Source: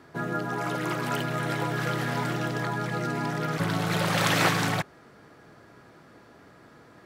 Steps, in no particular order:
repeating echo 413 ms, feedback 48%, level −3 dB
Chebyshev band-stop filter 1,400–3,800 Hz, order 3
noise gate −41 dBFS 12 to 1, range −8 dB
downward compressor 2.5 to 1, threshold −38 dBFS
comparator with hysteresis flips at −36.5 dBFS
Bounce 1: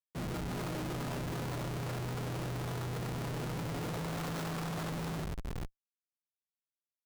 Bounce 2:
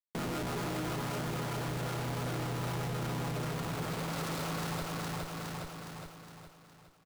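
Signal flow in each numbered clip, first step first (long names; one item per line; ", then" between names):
Chebyshev band-stop filter, then downward compressor, then repeating echo, then comparator with hysteresis, then noise gate
Chebyshev band-stop filter, then comparator with hysteresis, then noise gate, then repeating echo, then downward compressor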